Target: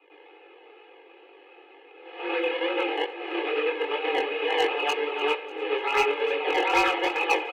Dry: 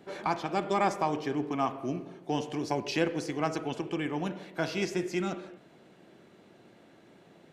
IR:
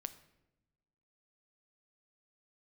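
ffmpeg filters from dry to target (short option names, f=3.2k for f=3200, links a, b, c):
-filter_complex "[0:a]areverse,bandreject=f=60:t=h:w=6,bandreject=f=120:t=h:w=6,bandreject=f=180:t=h:w=6,bandreject=f=240:t=h:w=6,bandreject=f=300:t=h:w=6,bandreject=f=360:t=h:w=6,bandreject=f=420:t=h:w=6,acrusher=samples=26:mix=1:aa=0.000001:lfo=1:lforange=26:lforate=2.5,highpass=f=170:t=q:w=0.5412,highpass=f=170:t=q:w=1.307,lowpass=f=3.2k:t=q:w=0.5176,lowpass=f=3.2k:t=q:w=0.7071,lowpass=f=3.2k:t=q:w=1.932,afreqshift=150,equalizer=f=2.6k:t=o:w=0.45:g=13,asplit=2[a][b];[1:a]atrim=start_sample=2205,adelay=99[c];[b][c]afir=irnorm=-1:irlink=0,volume=9.5dB[d];[a][d]amix=inputs=2:normalize=0,volume=12.5dB,asoftclip=hard,volume=-12.5dB,flanger=delay=20:depth=3.9:speed=2.2,aecho=1:1:2.4:0.92,aecho=1:1:296|592|888|1184:0.112|0.0527|0.0248|0.0116,volume=-2.5dB"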